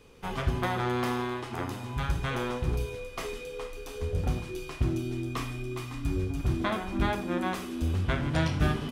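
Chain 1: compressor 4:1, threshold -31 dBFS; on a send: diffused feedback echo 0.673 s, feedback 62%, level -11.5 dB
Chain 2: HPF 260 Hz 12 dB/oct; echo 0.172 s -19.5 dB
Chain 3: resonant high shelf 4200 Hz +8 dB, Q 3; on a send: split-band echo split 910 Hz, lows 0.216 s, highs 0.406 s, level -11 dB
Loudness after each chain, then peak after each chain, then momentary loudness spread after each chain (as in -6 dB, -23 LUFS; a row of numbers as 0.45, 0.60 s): -35.5, -35.0, -31.0 LUFS; -19.5, -14.5, -12.5 dBFS; 4, 8, 7 LU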